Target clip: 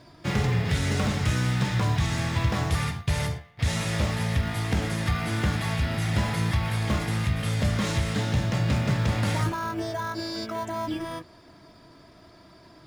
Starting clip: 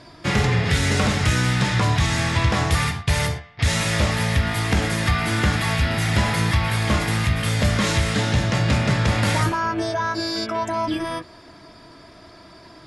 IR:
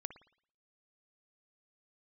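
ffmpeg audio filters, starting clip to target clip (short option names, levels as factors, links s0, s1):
-filter_complex "[0:a]equalizer=f=140:t=o:w=1.4:g=3,asplit=2[s0][s1];[s1]acrusher=samples=17:mix=1:aa=0.000001,volume=0.266[s2];[s0][s2]amix=inputs=2:normalize=0,volume=0.376"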